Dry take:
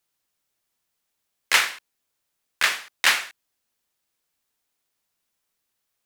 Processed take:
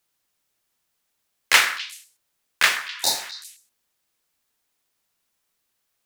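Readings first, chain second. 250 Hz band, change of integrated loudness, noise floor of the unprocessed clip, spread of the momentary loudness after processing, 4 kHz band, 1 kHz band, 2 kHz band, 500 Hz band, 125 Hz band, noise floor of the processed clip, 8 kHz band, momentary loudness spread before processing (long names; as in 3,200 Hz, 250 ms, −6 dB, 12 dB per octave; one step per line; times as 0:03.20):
+3.0 dB, +1.5 dB, −79 dBFS, 19 LU, +2.0 dB, +2.0 dB, +1.0 dB, +3.0 dB, can't be measured, −76 dBFS, +3.0 dB, 7 LU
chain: noise that follows the level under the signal 22 dB
healed spectral selection 0:02.80–0:03.23, 960–3,600 Hz after
echo through a band-pass that steps 127 ms, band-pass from 1,400 Hz, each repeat 1.4 octaves, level −10 dB
level +3 dB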